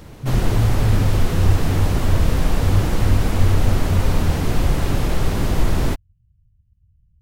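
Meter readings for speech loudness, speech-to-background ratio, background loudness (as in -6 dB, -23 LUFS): -23.5 LUFS, -1.5 dB, -22.0 LUFS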